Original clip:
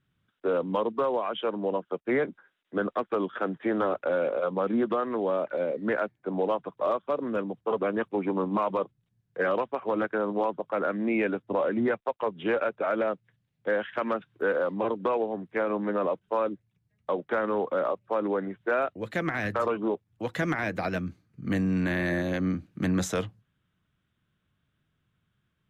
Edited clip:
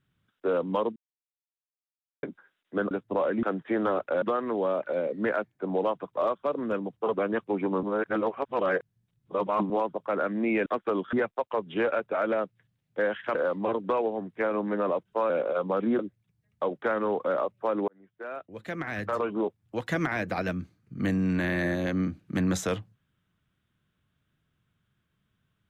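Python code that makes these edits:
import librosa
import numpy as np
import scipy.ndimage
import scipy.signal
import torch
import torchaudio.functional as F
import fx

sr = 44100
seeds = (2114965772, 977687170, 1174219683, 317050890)

y = fx.edit(x, sr, fx.silence(start_s=0.96, length_s=1.27),
    fx.swap(start_s=2.91, length_s=0.47, other_s=11.3, other_length_s=0.52),
    fx.move(start_s=4.17, length_s=0.69, to_s=16.46),
    fx.reverse_span(start_s=8.47, length_s=1.87),
    fx.cut(start_s=14.04, length_s=0.47),
    fx.fade_in_span(start_s=18.35, length_s=1.59), tone=tone)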